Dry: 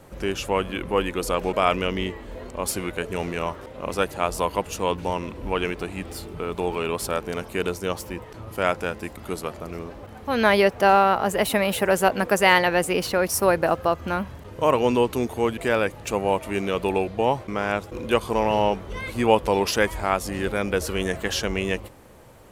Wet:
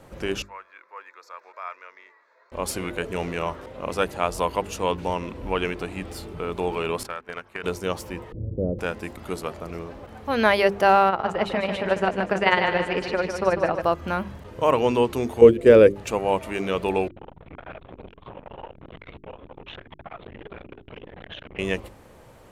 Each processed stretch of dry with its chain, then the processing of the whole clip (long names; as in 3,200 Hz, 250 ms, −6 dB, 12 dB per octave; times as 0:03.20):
0:00.42–0:02.52: four-pole ladder high-pass 800 Hz, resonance 80% + high-shelf EQ 5,200 Hz −8.5 dB + phaser with its sweep stopped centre 3,000 Hz, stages 6
0:07.03–0:07.64: noise gate −29 dBFS, range −20 dB + parametric band 1,600 Hz +14 dB 2.1 octaves + downward compressor 5 to 1, threshold −30 dBFS
0:08.32–0:08.79: Chebyshev low-pass filter 510 Hz, order 4 + low-shelf EQ 240 Hz +11.5 dB
0:11.09–0:13.82: low-pass filter 4,000 Hz + amplitude tremolo 18 Hz, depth 68% + repeating echo 149 ms, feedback 51%, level −7 dB
0:15.41–0:15.96: noise gate −27 dBFS, range −8 dB + low shelf with overshoot 620 Hz +8 dB, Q 3
0:17.08–0:21.59: linear-prediction vocoder at 8 kHz whisper + downward compressor 20 to 1, threshold −30 dBFS + saturating transformer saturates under 630 Hz
whole clip: high-shelf EQ 8,700 Hz −7 dB; mains-hum notches 50/100/150/200/250/300/350/400 Hz